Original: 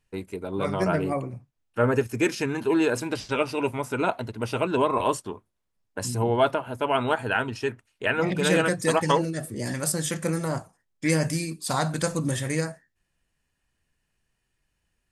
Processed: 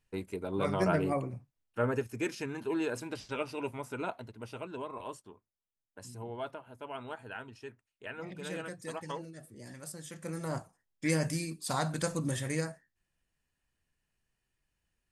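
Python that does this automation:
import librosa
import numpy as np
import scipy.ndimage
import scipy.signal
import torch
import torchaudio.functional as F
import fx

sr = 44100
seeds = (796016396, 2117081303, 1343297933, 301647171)

y = fx.gain(x, sr, db=fx.line((1.35, -4.0), (2.1, -10.5), (3.9, -10.5), (4.85, -18.0), (10.08, -18.0), (10.55, -6.5)))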